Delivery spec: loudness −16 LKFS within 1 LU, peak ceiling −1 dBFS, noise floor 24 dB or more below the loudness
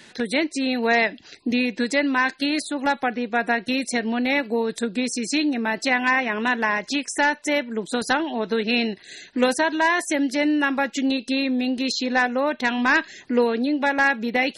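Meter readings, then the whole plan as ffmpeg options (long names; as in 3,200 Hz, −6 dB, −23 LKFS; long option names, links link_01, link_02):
integrated loudness −22.5 LKFS; sample peak −8.5 dBFS; target loudness −16.0 LKFS
→ -af "volume=6.5dB"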